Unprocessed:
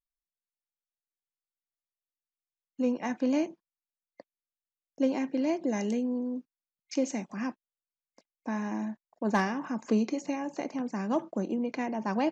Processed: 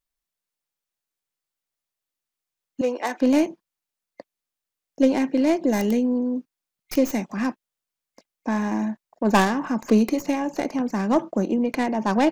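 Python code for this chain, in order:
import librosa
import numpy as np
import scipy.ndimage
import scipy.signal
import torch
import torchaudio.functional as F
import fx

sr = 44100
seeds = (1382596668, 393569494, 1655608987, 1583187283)

y = fx.tracing_dist(x, sr, depth_ms=0.15)
y = fx.highpass(y, sr, hz=350.0, slope=24, at=(2.81, 3.21))
y = y * 10.0 ** (8.5 / 20.0)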